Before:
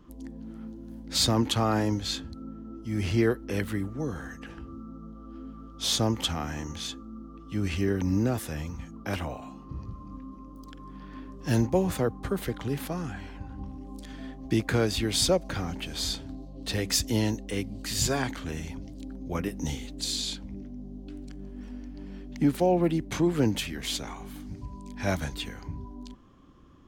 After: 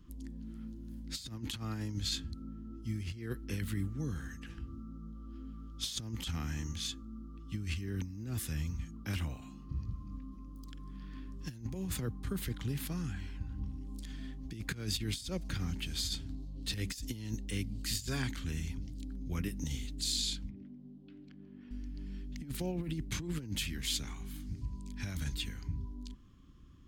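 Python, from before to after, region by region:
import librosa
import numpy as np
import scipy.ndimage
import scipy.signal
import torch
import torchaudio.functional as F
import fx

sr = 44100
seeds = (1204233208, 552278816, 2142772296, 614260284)

y = fx.chain(x, sr, fx.bandpass_edges(low_hz=130.0, high_hz=3100.0),
    fx.air_absorb(metres=91.0),
    fx.hum_notches(base_hz=50, count=9), at=(20.5, 21.71))
y = fx.tone_stack(y, sr, knobs='6-0-2')
y = fx.notch(y, sr, hz=5900.0, q=30.0)
y = fx.over_compress(y, sr, threshold_db=-46.0, ratio=-0.5)
y = F.gain(torch.from_numpy(y), 11.0).numpy()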